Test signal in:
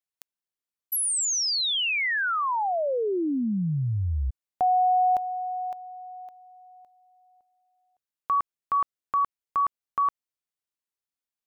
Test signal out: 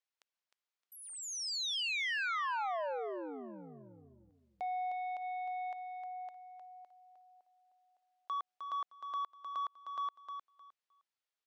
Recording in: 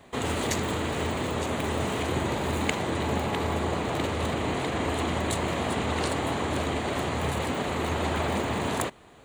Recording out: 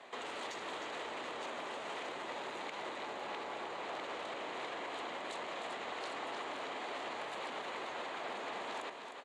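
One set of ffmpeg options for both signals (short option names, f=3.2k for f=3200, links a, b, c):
-af "acompressor=threshold=-32dB:ratio=16:attack=0.64:release=108:detection=rms,asoftclip=type=tanh:threshold=-34dB,highpass=520,lowpass=5.2k,aecho=1:1:308|616|924:0.447|0.0893|0.0179,volume=1.5dB"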